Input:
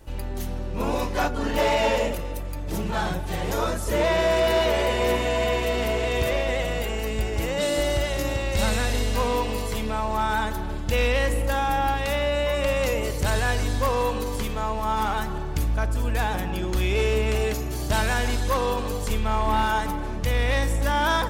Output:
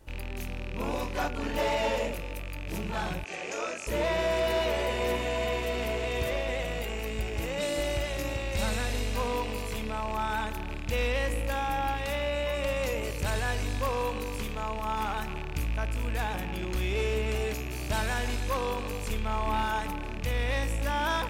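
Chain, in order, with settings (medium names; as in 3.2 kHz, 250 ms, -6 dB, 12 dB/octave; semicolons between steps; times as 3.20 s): rattle on loud lows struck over -33 dBFS, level -22 dBFS; 3.24–3.87 s: cabinet simulation 360–7900 Hz, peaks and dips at 950 Hz -7 dB, 2.5 kHz +6 dB, 3.7 kHz -6 dB, 6.5 kHz +6 dB; trim -6.5 dB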